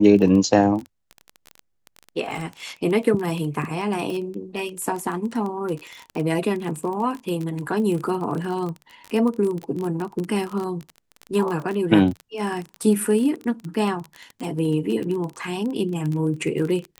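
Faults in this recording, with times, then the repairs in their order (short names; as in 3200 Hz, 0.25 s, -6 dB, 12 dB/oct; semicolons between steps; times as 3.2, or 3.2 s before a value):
crackle 21/s -26 dBFS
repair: de-click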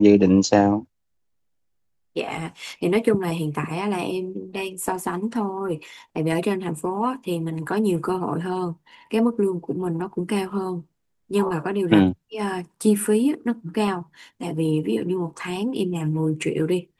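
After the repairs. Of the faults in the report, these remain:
none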